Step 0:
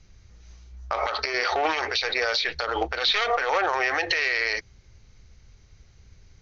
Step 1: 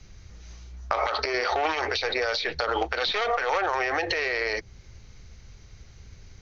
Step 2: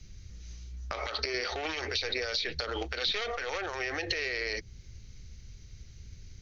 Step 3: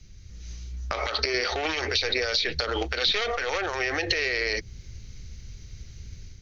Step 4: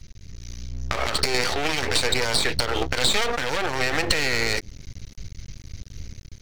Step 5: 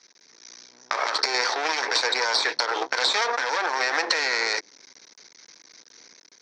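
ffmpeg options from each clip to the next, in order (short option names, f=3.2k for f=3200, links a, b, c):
-filter_complex "[0:a]acrossover=split=87|950[a][b][c];[a]acompressor=threshold=-50dB:ratio=4[d];[b]acompressor=threshold=-33dB:ratio=4[e];[c]acompressor=threshold=-34dB:ratio=4[f];[d][e][f]amix=inputs=3:normalize=0,volume=6dB"
-af "equalizer=f=890:w=0.68:g=-14.5"
-af "dynaudnorm=f=240:g=3:m=6.5dB"
-af "aeval=exprs='max(val(0),0)':c=same,volume=7.5dB"
-af "highpass=f=380:w=0.5412,highpass=f=380:w=1.3066,equalizer=f=390:t=q:w=4:g=-4,equalizer=f=560:t=q:w=4:g=-3,equalizer=f=970:t=q:w=4:g=7,equalizer=f=1.6k:t=q:w=4:g=4,equalizer=f=2.9k:t=q:w=4:g=-9,equalizer=f=5.6k:t=q:w=4:g=7,lowpass=f=5.8k:w=0.5412,lowpass=f=5.8k:w=1.3066"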